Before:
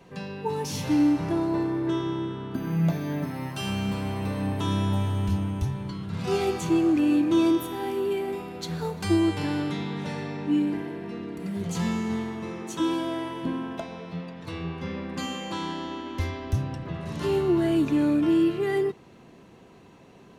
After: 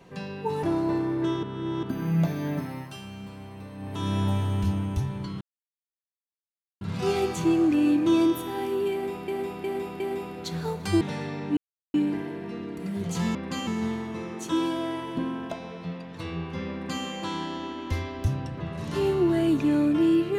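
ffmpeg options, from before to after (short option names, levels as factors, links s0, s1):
-filter_complex "[0:a]asplit=14[s0][s1][s2][s3][s4][s5][s6][s7][s8][s9][s10][s11][s12][s13];[s0]atrim=end=0.632[s14];[s1]atrim=start=1.278:end=2.082[s15];[s2]atrim=start=2.078:end=2.482,asetpts=PTS-STARTPTS,areverse[s16];[s3]atrim=start=2.478:end=3.67,asetpts=PTS-STARTPTS,afade=t=out:st=0.762:d=0.43:silence=0.251189[s17];[s4]atrim=start=3.67:end=4.43,asetpts=PTS-STARTPTS,volume=0.251[s18];[s5]atrim=start=4.43:end=6.06,asetpts=PTS-STARTPTS,afade=t=in:d=0.43:silence=0.251189,afade=t=out:st=1.626:d=0.004:c=hsin,apad=pad_dur=1.4[s19];[s6]atrim=start=6.06:end=8.532,asetpts=PTS-STARTPTS,afade=t=in:d=0.004:c=hsin[s20];[s7]atrim=start=8.168:end=8.532[s21];[s8]atrim=start=8.168:end=8.532[s22];[s9]atrim=start=8.168:end=9.182[s23];[s10]atrim=start=9.978:end=10.54,asetpts=PTS-STARTPTS,afade=t=out:st=0.558:d=0.004:c=hsin,apad=pad_dur=0.37[s24];[s11]atrim=start=10.54:end=11.952,asetpts=PTS-STARTPTS,afade=t=in:d=0.004:c=hsin[s25];[s12]atrim=start=15.008:end=15.332[s26];[s13]atrim=start=11.948[s27];[s14][s15]acrossfade=d=0.004:c1=hsin:c2=hsin[s28];[s28][s16]acrossfade=d=0.004:c1=hsin:c2=hsin[s29];[s17][s18][s19][s20]concat=n=4:v=0:a=1[s30];[s29][s30]acrossfade=d=0.004:c1=hsin:c2=hsin[s31];[s31][s21]acrossfade=d=0.004:c1=hsin:c2=hsin[s32];[s32][s22]acrossfade=d=0.004:c1=hsin:c2=hsin[s33];[s33][s23]acrossfade=d=0.004:c1=hsin:c2=hsin[s34];[s24][s25]concat=n=2:v=0:a=1[s35];[s34][s35]acrossfade=d=0.004:c1=hsin:c2=hsin[s36];[s36][s26]acrossfade=d=0.004:c1=hsin:c2=hsin[s37];[s37][s27]acrossfade=d=0.004:c1=hsin:c2=hsin"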